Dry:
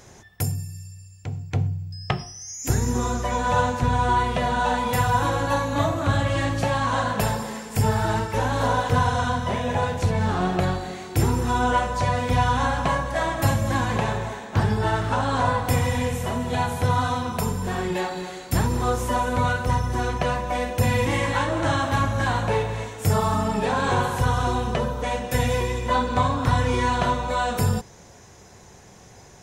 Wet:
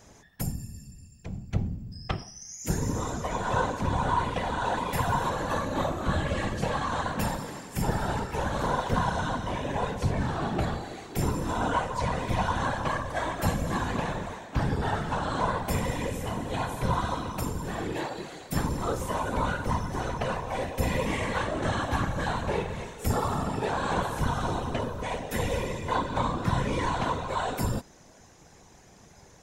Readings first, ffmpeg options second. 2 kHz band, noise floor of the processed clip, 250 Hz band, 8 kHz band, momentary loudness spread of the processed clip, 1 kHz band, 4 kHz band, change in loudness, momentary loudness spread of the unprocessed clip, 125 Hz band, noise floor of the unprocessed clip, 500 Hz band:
-6.5 dB, -54 dBFS, -5.0 dB, -6.0 dB, 6 LU, -6.0 dB, -6.0 dB, -6.0 dB, 6 LU, -7.5 dB, -48 dBFS, -6.0 dB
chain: -af "afftfilt=real='hypot(re,im)*cos(2*PI*random(0))':imag='hypot(re,im)*sin(2*PI*random(1))':win_size=512:overlap=0.75"

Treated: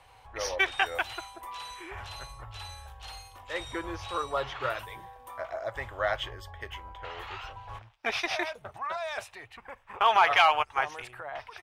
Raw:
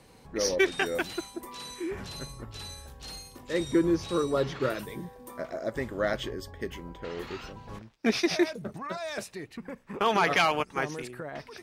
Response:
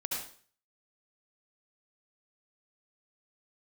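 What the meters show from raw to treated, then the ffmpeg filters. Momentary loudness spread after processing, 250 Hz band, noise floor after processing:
20 LU, -16.0 dB, -57 dBFS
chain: -af "firequalizer=gain_entry='entry(110,0);entry(160,-24);entry(760,6);entry(1800,1);entry(3100,4);entry(4400,-6)':delay=0.05:min_phase=1"

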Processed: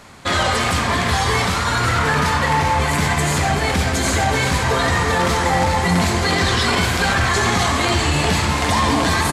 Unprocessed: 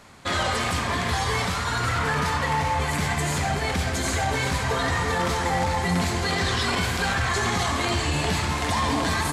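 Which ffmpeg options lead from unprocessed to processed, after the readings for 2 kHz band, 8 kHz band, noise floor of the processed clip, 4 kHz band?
+7.0 dB, +7.0 dB, -20 dBFS, +6.5 dB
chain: -filter_complex "[0:a]asplit=7[a][b][c][d][e][f][g];[b]adelay=396,afreqshift=130,volume=-14dB[h];[c]adelay=792,afreqshift=260,volume=-18.6dB[i];[d]adelay=1188,afreqshift=390,volume=-23.2dB[j];[e]adelay=1584,afreqshift=520,volume=-27.7dB[k];[f]adelay=1980,afreqshift=650,volume=-32.3dB[l];[g]adelay=2376,afreqshift=780,volume=-36.9dB[m];[a][h][i][j][k][l][m]amix=inputs=7:normalize=0,volume=6.5dB"

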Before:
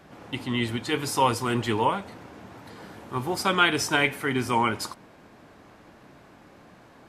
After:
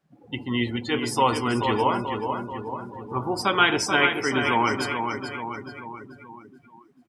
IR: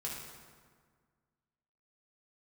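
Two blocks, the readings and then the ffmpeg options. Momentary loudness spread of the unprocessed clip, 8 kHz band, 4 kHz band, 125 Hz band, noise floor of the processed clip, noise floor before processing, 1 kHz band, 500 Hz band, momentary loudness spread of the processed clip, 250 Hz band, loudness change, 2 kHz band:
23 LU, -0.5 dB, +1.5 dB, 0.0 dB, -57 dBFS, -53 dBFS, +2.5 dB, +3.0 dB, 16 LU, +2.5 dB, +1.0 dB, +3.0 dB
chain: -filter_complex "[0:a]aecho=1:1:434|868|1302|1736|2170|2604|3038|3472:0.501|0.291|0.169|0.0978|0.0567|0.0329|0.0191|0.0111,asplit=2[a][b];[1:a]atrim=start_sample=2205,afade=t=out:st=0.23:d=0.01,atrim=end_sample=10584[c];[b][c]afir=irnorm=-1:irlink=0,volume=-11dB[d];[a][d]amix=inputs=2:normalize=0,acrusher=bits=8:mix=0:aa=0.5,bandreject=f=46.31:t=h:w=4,bandreject=f=92.62:t=h:w=4,bandreject=f=138.93:t=h:w=4,bandreject=f=185.24:t=h:w=4,afftdn=nr=26:nf=-34,adynamicequalizer=threshold=0.00794:dfrequency=150:dqfactor=2.1:tfrequency=150:tqfactor=2.1:attack=5:release=100:ratio=0.375:range=3:mode=cutabove:tftype=bell"

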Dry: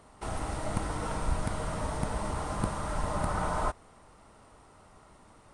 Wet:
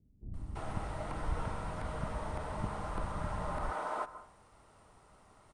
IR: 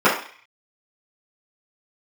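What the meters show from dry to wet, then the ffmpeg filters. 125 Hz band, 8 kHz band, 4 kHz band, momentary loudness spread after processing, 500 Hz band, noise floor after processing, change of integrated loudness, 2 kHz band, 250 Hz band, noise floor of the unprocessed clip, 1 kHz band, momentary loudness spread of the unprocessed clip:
-5.5 dB, -13.5 dB, -8.5 dB, 7 LU, -5.5 dB, -63 dBFS, -6.0 dB, -5.0 dB, -7.0 dB, -57 dBFS, -5.0 dB, 4 LU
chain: -filter_complex "[0:a]acrossover=split=3700[a][b];[b]acompressor=threshold=-56dB:ratio=4:attack=1:release=60[c];[a][c]amix=inputs=2:normalize=0,acrossover=split=270[d][e];[e]adelay=340[f];[d][f]amix=inputs=2:normalize=0,asplit=2[g][h];[1:a]atrim=start_sample=2205,adelay=141[i];[h][i]afir=irnorm=-1:irlink=0,volume=-39dB[j];[g][j]amix=inputs=2:normalize=0,volume=-5dB"

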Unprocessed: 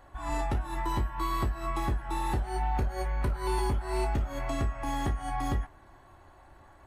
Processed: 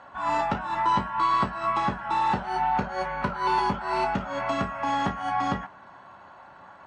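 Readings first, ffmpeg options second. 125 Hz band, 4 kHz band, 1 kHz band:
-4.5 dB, +6.0 dB, +10.0 dB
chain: -af "highpass=180,equalizer=f=190:t=q:w=4:g=10,equalizer=f=340:t=q:w=4:g=-9,equalizer=f=580:t=q:w=4:g=3,equalizer=f=960:t=q:w=4:g=7,equalizer=f=1.4k:t=q:w=4:g=8,equalizer=f=2.8k:t=q:w=4:g=4,lowpass=f=6k:w=0.5412,lowpass=f=6k:w=1.3066,volume=5dB"

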